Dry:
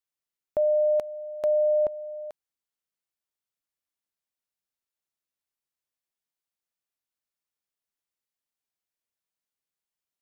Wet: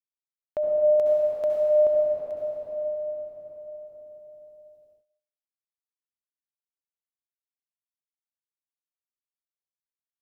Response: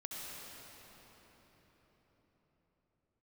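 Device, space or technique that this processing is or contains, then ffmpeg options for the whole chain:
cathedral: -filter_complex "[1:a]atrim=start_sample=2205[s0];[0:a][s0]afir=irnorm=-1:irlink=0,agate=range=0.0224:threshold=0.00112:ratio=3:detection=peak,volume=1.41"

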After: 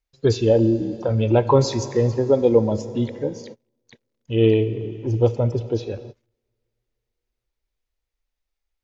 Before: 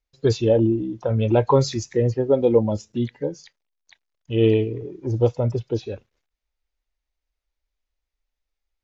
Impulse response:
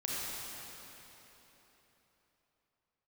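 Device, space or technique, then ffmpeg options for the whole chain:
keyed gated reverb: -filter_complex "[0:a]asplit=3[s0][s1][s2];[1:a]atrim=start_sample=2205[s3];[s1][s3]afir=irnorm=-1:irlink=0[s4];[s2]apad=whole_len=389736[s5];[s4][s5]sidechaingate=range=0.0224:threshold=0.00316:ratio=16:detection=peak,volume=0.158[s6];[s0][s6]amix=inputs=2:normalize=0"

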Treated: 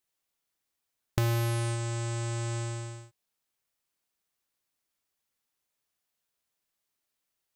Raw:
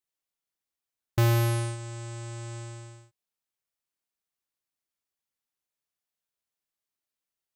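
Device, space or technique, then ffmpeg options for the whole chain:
de-esser from a sidechain: -filter_complex "[0:a]asplit=2[s0][s1];[s1]highpass=f=6900:w=0.5412,highpass=f=6900:w=1.3066,apad=whole_len=333389[s2];[s0][s2]sidechaincompress=threshold=0.00562:ratio=10:attack=2:release=28,volume=2"

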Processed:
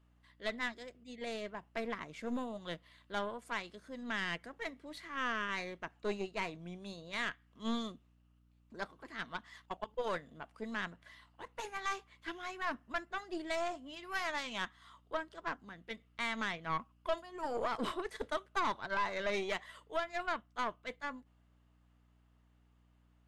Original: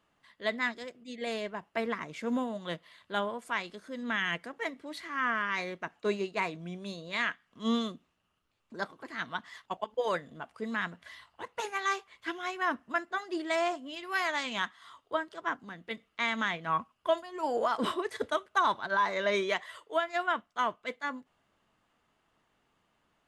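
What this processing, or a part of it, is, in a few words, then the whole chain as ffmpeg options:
valve amplifier with mains hum: -filter_complex "[0:a]aeval=exprs='(tanh(15.8*val(0)+0.65)-tanh(0.65))/15.8':c=same,aeval=exprs='val(0)+0.000631*(sin(2*PI*60*n/s)+sin(2*PI*2*60*n/s)/2+sin(2*PI*3*60*n/s)/3+sin(2*PI*4*60*n/s)/4+sin(2*PI*5*60*n/s)/5)':c=same,asplit=3[s0][s1][s2];[s0]afade=t=out:st=10.92:d=0.02[s3];[s1]adynamicequalizer=threshold=0.00251:dfrequency=1900:dqfactor=0.7:tfrequency=1900:tqfactor=0.7:attack=5:release=100:ratio=0.375:range=2:mode=cutabove:tftype=highshelf,afade=t=in:st=10.92:d=0.02,afade=t=out:st=11.83:d=0.02[s4];[s2]afade=t=in:st=11.83:d=0.02[s5];[s3][s4][s5]amix=inputs=3:normalize=0,volume=0.708"

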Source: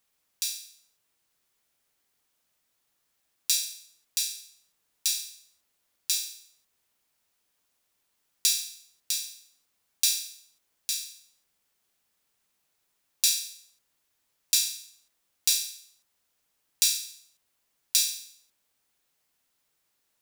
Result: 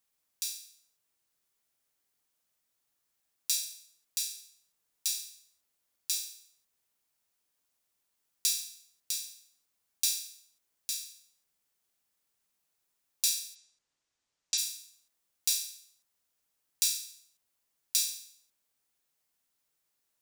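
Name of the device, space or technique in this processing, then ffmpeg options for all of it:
exciter from parts: -filter_complex "[0:a]asplit=3[s0][s1][s2];[s0]afade=t=out:st=13.54:d=0.02[s3];[s1]lowpass=f=7500:w=0.5412,lowpass=f=7500:w=1.3066,afade=t=in:st=13.54:d=0.02,afade=t=out:st=14.57:d=0.02[s4];[s2]afade=t=in:st=14.57:d=0.02[s5];[s3][s4][s5]amix=inputs=3:normalize=0,asplit=2[s6][s7];[s7]highpass=4200,asoftclip=type=tanh:threshold=0.316,volume=0.398[s8];[s6][s8]amix=inputs=2:normalize=0,volume=0.473"

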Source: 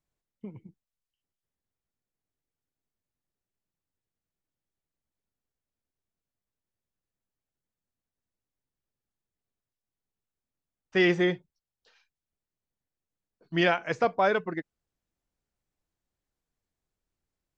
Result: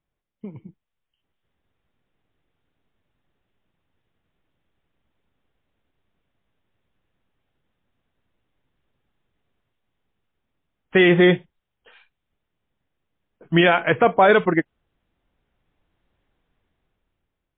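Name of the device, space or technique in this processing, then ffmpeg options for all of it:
low-bitrate web radio: -af "dynaudnorm=f=490:g=5:m=4.47,alimiter=limit=0.335:level=0:latency=1:release=29,volume=1.78" -ar 8000 -c:a libmp3lame -b:a 24k

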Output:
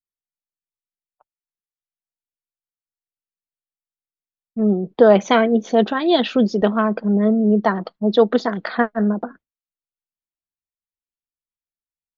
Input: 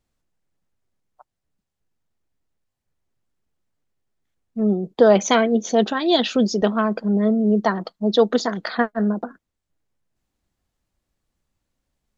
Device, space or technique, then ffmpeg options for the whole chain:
hearing-loss simulation: -af "lowpass=3200,agate=range=0.0224:threshold=0.0112:ratio=3:detection=peak,volume=1.26"

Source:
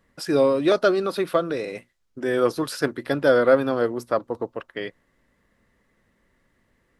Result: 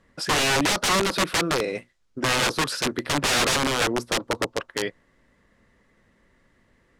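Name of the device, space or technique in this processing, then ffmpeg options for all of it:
overflowing digital effects unit: -af "aeval=exprs='(mod(10*val(0)+1,2)-1)/10':c=same,lowpass=9100,volume=1.58"

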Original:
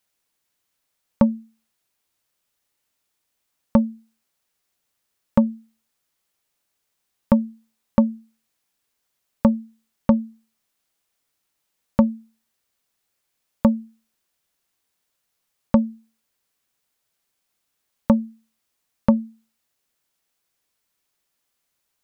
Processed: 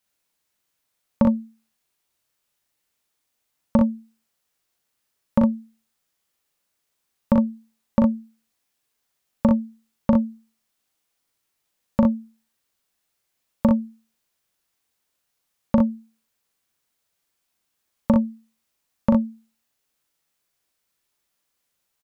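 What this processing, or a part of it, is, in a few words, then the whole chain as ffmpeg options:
slapback doubling: -filter_complex "[0:a]asplit=3[s0][s1][s2];[s1]adelay=39,volume=0.596[s3];[s2]adelay=61,volume=0.596[s4];[s0][s3][s4]amix=inputs=3:normalize=0,volume=0.75"

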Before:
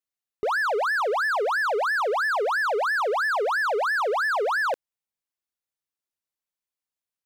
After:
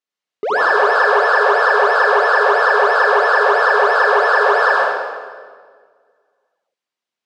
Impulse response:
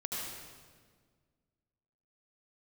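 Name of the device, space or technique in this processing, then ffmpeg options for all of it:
supermarket ceiling speaker: -filter_complex "[0:a]highpass=230,lowpass=5200[s0];[1:a]atrim=start_sample=2205[s1];[s0][s1]afir=irnorm=-1:irlink=0,volume=2.51"

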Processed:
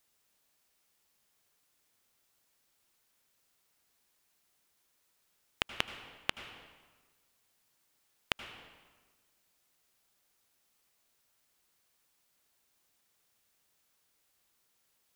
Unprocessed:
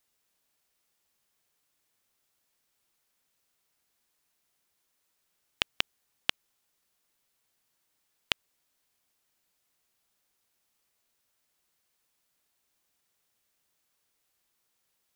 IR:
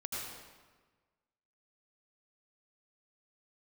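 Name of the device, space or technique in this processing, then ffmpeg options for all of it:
saturated reverb return: -filter_complex "[0:a]acrossover=split=2500[s0][s1];[s1]acompressor=threshold=0.0282:ratio=4:attack=1:release=60[s2];[s0][s2]amix=inputs=2:normalize=0,asplit=2[s3][s4];[1:a]atrim=start_sample=2205[s5];[s4][s5]afir=irnorm=-1:irlink=0,asoftclip=type=tanh:threshold=0.0299,volume=0.376[s6];[s3][s6]amix=inputs=2:normalize=0"

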